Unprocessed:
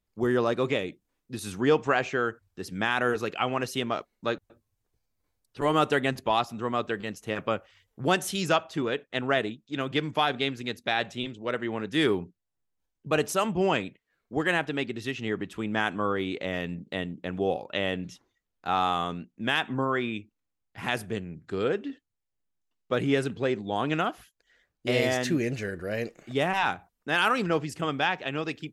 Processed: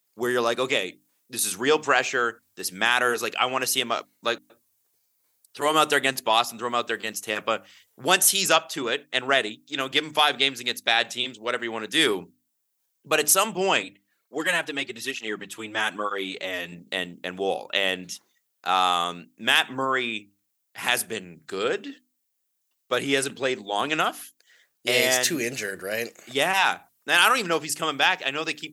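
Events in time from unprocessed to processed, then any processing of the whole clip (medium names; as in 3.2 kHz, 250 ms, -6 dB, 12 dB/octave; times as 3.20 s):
13.83–16.72 s: cancelling through-zero flanger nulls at 1.1 Hz, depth 5.7 ms
whole clip: high-pass 89 Hz; RIAA curve recording; hum notches 50/100/150/200/250/300 Hz; trim +4 dB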